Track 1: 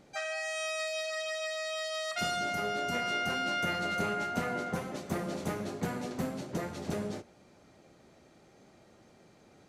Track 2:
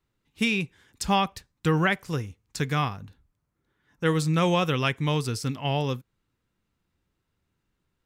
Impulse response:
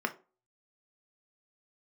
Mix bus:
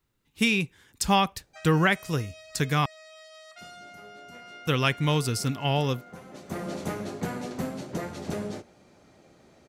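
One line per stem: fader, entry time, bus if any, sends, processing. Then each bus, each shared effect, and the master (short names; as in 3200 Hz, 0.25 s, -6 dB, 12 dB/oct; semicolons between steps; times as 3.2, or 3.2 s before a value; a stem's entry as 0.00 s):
+2.5 dB, 1.40 s, no send, auto duck -16 dB, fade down 1.90 s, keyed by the second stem
+1.0 dB, 0.00 s, muted 2.86–4.67, no send, high shelf 7500 Hz +7 dB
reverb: off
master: dry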